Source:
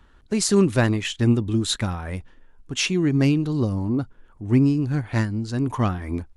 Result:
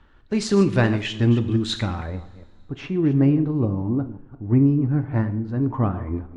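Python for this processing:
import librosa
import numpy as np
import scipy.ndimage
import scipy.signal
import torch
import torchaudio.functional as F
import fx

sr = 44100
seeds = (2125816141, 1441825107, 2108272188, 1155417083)

y = fx.reverse_delay(x, sr, ms=174, wet_db=-13.5)
y = fx.lowpass(y, sr, hz=fx.steps((0.0, 4200.0), (2.06, 1200.0)), slope=12)
y = fx.rev_double_slope(y, sr, seeds[0], early_s=0.48, late_s=2.8, knee_db=-21, drr_db=9.0)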